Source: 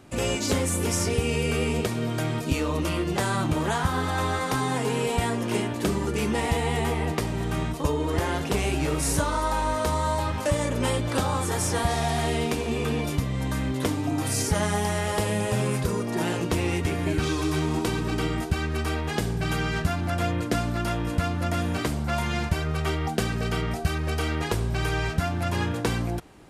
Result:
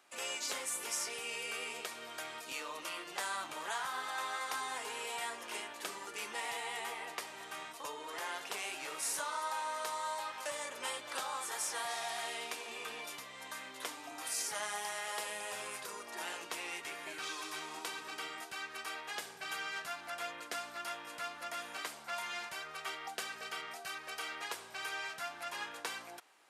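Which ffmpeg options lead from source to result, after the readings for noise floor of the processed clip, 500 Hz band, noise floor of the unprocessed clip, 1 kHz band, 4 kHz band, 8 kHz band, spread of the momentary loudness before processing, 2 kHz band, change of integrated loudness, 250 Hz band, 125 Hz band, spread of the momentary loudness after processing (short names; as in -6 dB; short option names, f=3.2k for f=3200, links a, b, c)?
-50 dBFS, -19.0 dB, -30 dBFS, -11.0 dB, -8.0 dB, -8.0 dB, 3 LU, -8.5 dB, -13.5 dB, -29.5 dB, under -40 dB, 6 LU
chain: -af "highpass=930,volume=-8dB"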